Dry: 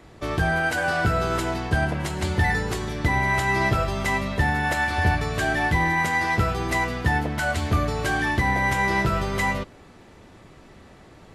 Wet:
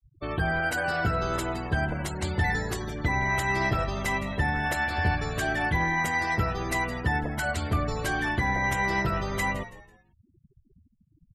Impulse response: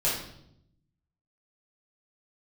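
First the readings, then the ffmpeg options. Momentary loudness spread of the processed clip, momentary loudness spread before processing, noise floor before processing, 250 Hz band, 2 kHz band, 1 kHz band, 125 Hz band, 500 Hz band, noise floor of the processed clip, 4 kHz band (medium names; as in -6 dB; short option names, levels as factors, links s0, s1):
5 LU, 5 LU, -49 dBFS, -4.5 dB, -4.0 dB, -4.5 dB, -4.5 dB, -4.5 dB, -66 dBFS, -4.5 dB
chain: -filter_complex "[0:a]crystalizer=i=1:c=0,afftfilt=real='re*gte(hypot(re,im),0.0282)':imag='im*gte(hypot(re,im),0.0282)':win_size=1024:overlap=0.75,asplit=4[s0][s1][s2][s3];[s1]adelay=165,afreqshift=-83,volume=0.168[s4];[s2]adelay=330,afreqshift=-166,volume=0.0569[s5];[s3]adelay=495,afreqshift=-249,volume=0.0195[s6];[s0][s4][s5][s6]amix=inputs=4:normalize=0,volume=0.596"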